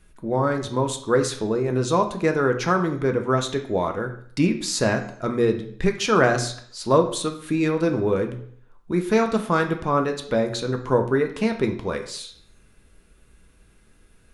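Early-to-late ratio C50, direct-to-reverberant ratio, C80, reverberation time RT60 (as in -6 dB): 10.0 dB, 4.0 dB, 13.5 dB, 0.60 s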